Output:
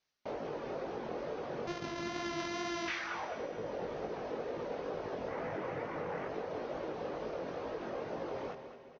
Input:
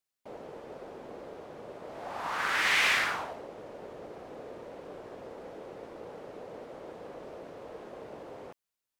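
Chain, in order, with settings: 1.67–2.88 s: sorted samples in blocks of 128 samples; Chebyshev low-pass 6.2 kHz, order 6; reverb removal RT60 1 s; 5.28–6.28 s: graphic EQ 125/1000/2000/4000 Hz +9/+4/+9/-5 dB; compression 12:1, threshold -44 dBFS, peak gain reduction 20.5 dB; chorus 2.2 Hz, delay 18 ms, depth 4.8 ms; feedback delay 210 ms, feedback 41%, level -10.5 dB; reverberation RT60 3.8 s, pre-delay 3 ms, DRR 11.5 dB; trim +12 dB

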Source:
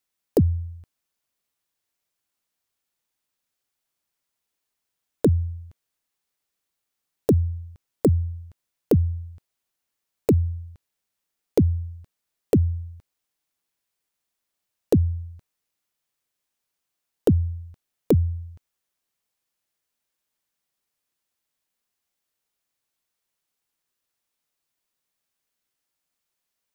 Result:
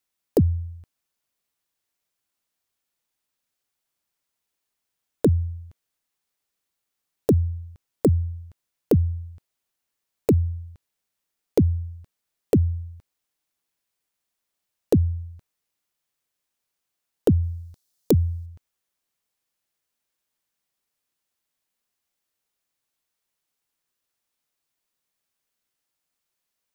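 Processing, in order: 17.43–18.46 s: resonant high shelf 3.5 kHz +8 dB, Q 1.5

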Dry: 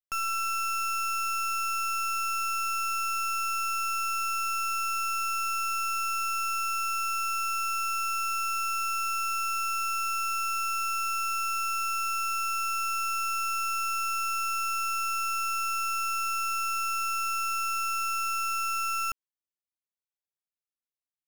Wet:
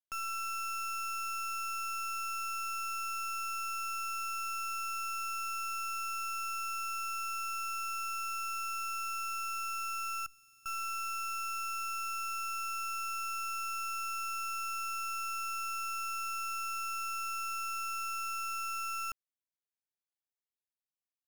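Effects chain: 10.26–10.66 s: amplifier tone stack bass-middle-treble 10-0-1; trim -7.5 dB

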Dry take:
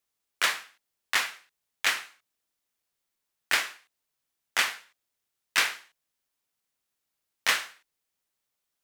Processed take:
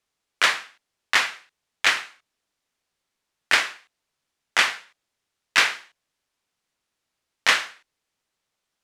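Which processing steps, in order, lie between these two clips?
distance through air 52 m; trim +7 dB

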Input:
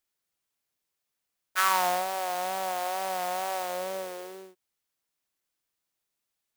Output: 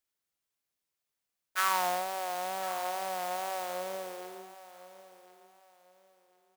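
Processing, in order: feedback delay 1052 ms, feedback 29%, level -16 dB; trim -4 dB

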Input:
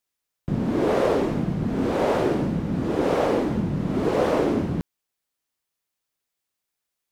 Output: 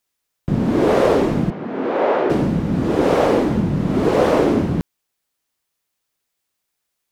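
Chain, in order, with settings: 1.50–2.30 s: band-pass 360–2500 Hz; trim +6 dB

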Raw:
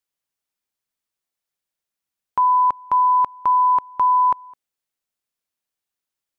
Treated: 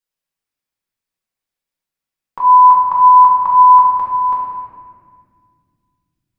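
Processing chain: 2.40–3.84 s: fifteen-band graphic EQ 100 Hz +9 dB, 400 Hz -6 dB, 1 kHz +10 dB; reverberation RT60 2.0 s, pre-delay 4 ms, DRR -6.5 dB; trim -5 dB

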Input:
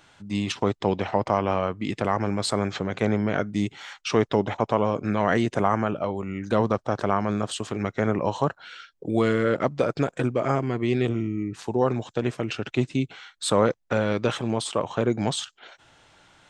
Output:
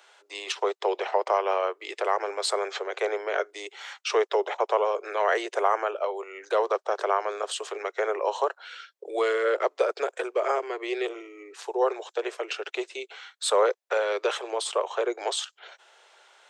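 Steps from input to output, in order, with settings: steep high-pass 380 Hz 72 dB/octave

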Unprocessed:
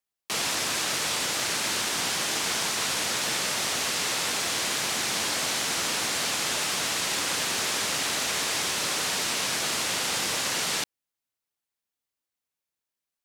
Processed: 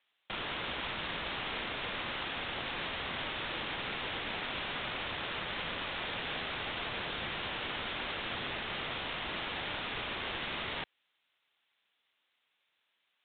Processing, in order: tilt EQ +4 dB/octave; sine folder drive 17 dB, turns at -14.5 dBFS; resampled via 8 kHz; trim -8.5 dB

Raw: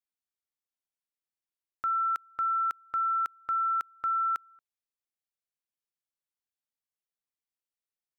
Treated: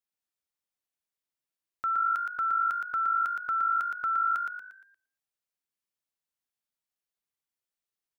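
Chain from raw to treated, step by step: frequency-shifting echo 117 ms, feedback 41%, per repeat +51 Hz, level -4.5 dB

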